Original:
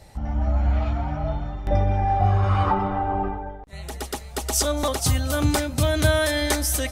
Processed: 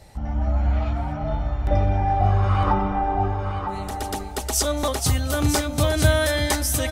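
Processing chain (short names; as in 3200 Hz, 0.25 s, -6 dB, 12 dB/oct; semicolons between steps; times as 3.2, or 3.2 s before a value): 1.28–1.69 doubler 22 ms -3 dB; on a send: echo 0.959 s -7 dB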